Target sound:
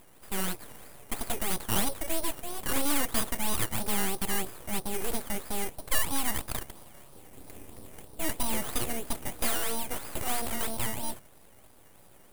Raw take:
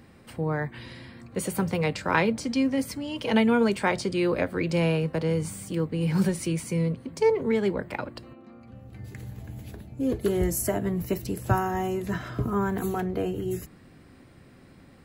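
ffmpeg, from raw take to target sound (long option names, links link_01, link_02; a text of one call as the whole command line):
ffmpeg -i in.wav -af "equalizer=frequency=510:width=0.4:gain=9.5,acrusher=samples=15:mix=1:aa=0.000001:lfo=1:lforange=9:lforate=2.5,asoftclip=type=tanh:threshold=-10.5dB,highshelf=frequency=5700:width_type=q:width=1.5:gain=13,asetrate=53802,aresample=44100,aeval=exprs='abs(val(0))':channel_layout=same,volume=-9dB" out.wav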